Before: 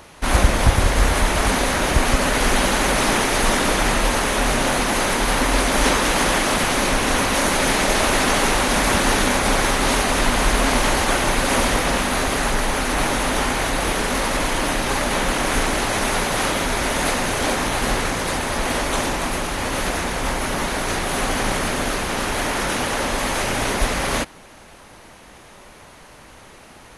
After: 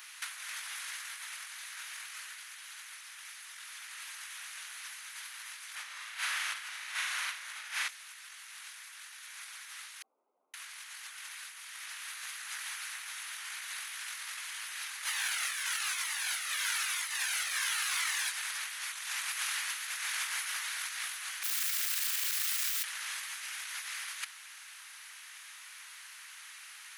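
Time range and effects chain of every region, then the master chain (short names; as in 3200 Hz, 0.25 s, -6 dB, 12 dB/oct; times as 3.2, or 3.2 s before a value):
5.75–7.89 high shelf 4100 Hz -10.5 dB + chopper 1.3 Hz, depth 65%, duty 55% + flutter echo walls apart 6.4 m, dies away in 0.5 s
10.02–10.54 inverse Chebyshev low-pass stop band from 1600 Hz, stop band 70 dB + ensemble effect
15.06–18.31 short-mantissa float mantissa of 4-bit + cascading flanger falling 1 Hz
21.43–22.84 tube stage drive 25 dB, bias 0.6 + wrapped overs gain 29 dB
whole clip: HPF 1500 Hz 24 dB/oct; high shelf 11000 Hz +6 dB; negative-ratio compressor -31 dBFS, ratio -0.5; gain -7 dB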